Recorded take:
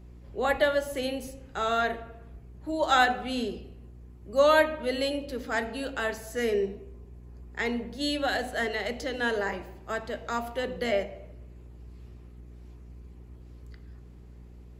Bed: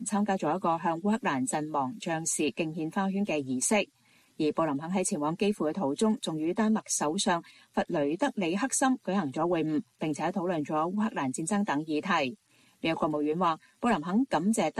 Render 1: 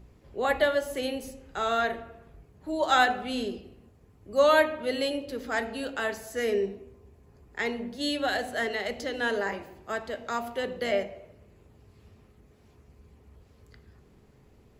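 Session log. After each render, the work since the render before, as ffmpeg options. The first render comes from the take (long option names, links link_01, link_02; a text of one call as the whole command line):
ffmpeg -i in.wav -af "bandreject=frequency=60:width_type=h:width=4,bandreject=frequency=120:width_type=h:width=4,bandreject=frequency=180:width_type=h:width=4,bandreject=frequency=240:width_type=h:width=4,bandreject=frequency=300:width_type=h:width=4,bandreject=frequency=360:width_type=h:width=4" out.wav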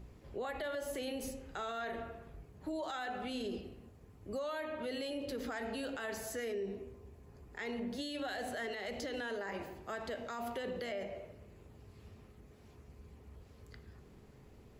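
ffmpeg -i in.wav -af "acompressor=threshold=-30dB:ratio=5,alimiter=level_in=8dB:limit=-24dB:level=0:latency=1:release=38,volume=-8dB" out.wav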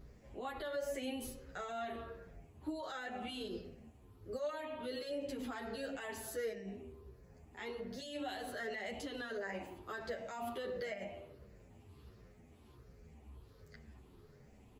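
ffmpeg -i in.wav -filter_complex "[0:a]afftfilt=real='re*pow(10,7/40*sin(2*PI*(0.59*log(max(b,1)*sr/1024/100)/log(2)-(1.4)*(pts-256)/sr)))':imag='im*pow(10,7/40*sin(2*PI*(0.59*log(max(b,1)*sr/1024/100)/log(2)-(1.4)*(pts-256)/sr)))':win_size=1024:overlap=0.75,asplit=2[link_01][link_02];[link_02]adelay=9.7,afreqshift=-1.6[link_03];[link_01][link_03]amix=inputs=2:normalize=1" out.wav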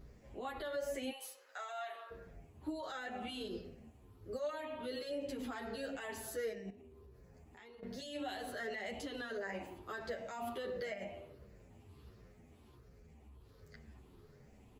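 ffmpeg -i in.wav -filter_complex "[0:a]asplit=3[link_01][link_02][link_03];[link_01]afade=type=out:start_time=1.11:duration=0.02[link_04];[link_02]highpass=frequency=650:width=0.5412,highpass=frequency=650:width=1.3066,afade=type=in:start_time=1.11:duration=0.02,afade=type=out:start_time=2.1:duration=0.02[link_05];[link_03]afade=type=in:start_time=2.1:duration=0.02[link_06];[link_04][link_05][link_06]amix=inputs=3:normalize=0,asettb=1/sr,asplit=3[link_07][link_08][link_09];[link_07]atrim=end=6.704[link_10];[link_08]atrim=start=6.7:end=7.83,asetpts=PTS-STARTPTS,afade=type=in:duration=0.004:curve=qsin,afade=type=out:start_time=1.126:duration=0.004:curve=qsin,acompressor=threshold=-54dB:ratio=6:attack=3.2:release=140:knee=1:detection=peak[link_11];[link_09]atrim=start=7.826[link_12];[link_10][link_11]acrossfade=duration=0.004:curve1=hsin:curve2=qsin[link_13];[link_13][link_12]acrossfade=duration=0.004:curve1=qsin:curve2=hsin,asettb=1/sr,asplit=3[link_14][link_15][link_16];[link_14]atrim=end=12.584[link_17];[link_15]atrim=start=12.58:end=13.62,asetpts=PTS-STARTPTS,afade=type=in:duration=0.004:curve=qsin,afade=type=out:start_time=1.036:duration=0.004:curve=qsin,acompressor=threshold=-57dB:ratio=2:attack=3.2:release=140:knee=1:detection=peak[link_18];[link_16]atrim=start=13.616[link_19];[link_17][link_18]acrossfade=duration=0.004:curve1=hsin:curve2=qsin[link_20];[link_20][link_19]acrossfade=duration=0.004:curve1=qsin:curve2=hsin" out.wav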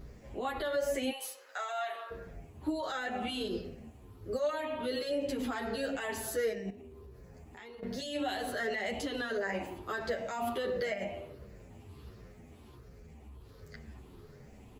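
ffmpeg -i in.wav -af "volume=7.5dB" out.wav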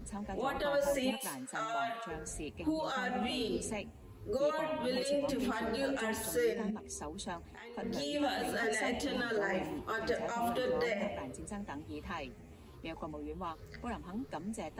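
ffmpeg -i in.wav -i bed.wav -filter_complex "[1:a]volume=-14.5dB[link_01];[0:a][link_01]amix=inputs=2:normalize=0" out.wav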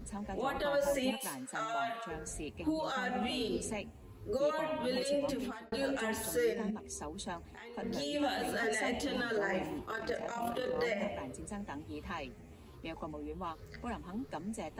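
ffmpeg -i in.wav -filter_complex "[0:a]asplit=3[link_01][link_02][link_03];[link_01]afade=type=out:start_time=9.84:duration=0.02[link_04];[link_02]tremolo=f=42:d=0.571,afade=type=in:start_time=9.84:duration=0.02,afade=type=out:start_time=10.77:duration=0.02[link_05];[link_03]afade=type=in:start_time=10.77:duration=0.02[link_06];[link_04][link_05][link_06]amix=inputs=3:normalize=0,asplit=2[link_07][link_08];[link_07]atrim=end=5.72,asetpts=PTS-STARTPTS,afade=type=out:start_time=5.27:duration=0.45[link_09];[link_08]atrim=start=5.72,asetpts=PTS-STARTPTS,afade=type=in:duration=0.004:curve=hsin[link_10];[link_09][link_10]concat=n=2:v=0:a=1" out.wav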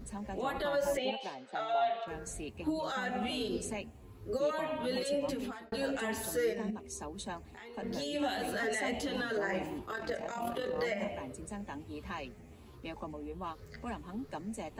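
ffmpeg -i in.wav -filter_complex "[0:a]asettb=1/sr,asplit=3[link_01][link_02][link_03];[link_01]atrim=end=0.974[link_04];[link_02]atrim=start=0.97:end=2.08,asetpts=PTS-STARTPTS,afade=type=in:duration=0.004:curve=qsin,afade=type=out:start_time=1.106:duration=0.004:curve=qsin,highpass=190,equalizer=frequency=270:width_type=q:width=4:gain=-9,equalizer=frequency=400:width_type=q:width=4:gain=7,equalizer=frequency=730:width_type=q:width=4:gain=9,equalizer=frequency=1100:width_type=q:width=4:gain=-6,equalizer=frequency=1700:width_type=q:width=4:gain=-5,equalizer=frequency=3500:width_type=q:width=4:gain=4,lowpass=frequency=4700:width=0.5412,lowpass=frequency=4700:width=1.3066[link_05];[link_03]atrim=start=2.076[link_06];[link_04][link_05]acrossfade=duration=0.004:curve1=hsin:curve2=qsin[link_07];[link_07][link_06]acrossfade=duration=0.004:curve1=qsin:curve2=hsin" out.wav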